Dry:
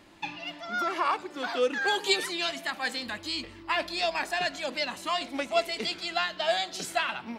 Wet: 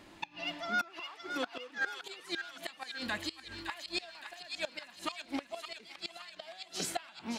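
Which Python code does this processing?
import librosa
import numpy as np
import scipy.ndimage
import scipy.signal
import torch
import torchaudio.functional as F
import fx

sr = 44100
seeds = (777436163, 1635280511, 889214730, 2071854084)

p1 = fx.gate_flip(x, sr, shuts_db=-22.0, range_db=-24)
y = p1 + fx.echo_wet_highpass(p1, sr, ms=566, feedback_pct=53, hz=1400.0, wet_db=-5.5, dry=0)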